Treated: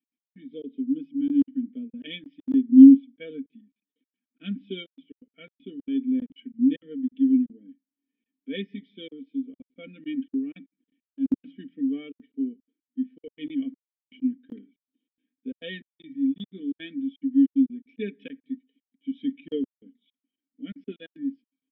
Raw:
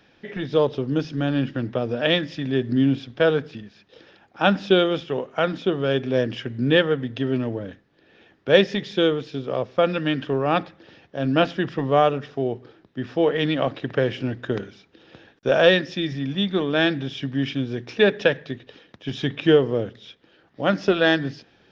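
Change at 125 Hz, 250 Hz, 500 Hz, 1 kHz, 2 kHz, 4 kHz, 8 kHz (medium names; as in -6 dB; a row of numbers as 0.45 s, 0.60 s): under -20 dB, +2.5 dB, -21.5 dB, under -35 dB, -21.5 dB, -18.0 dB, no reading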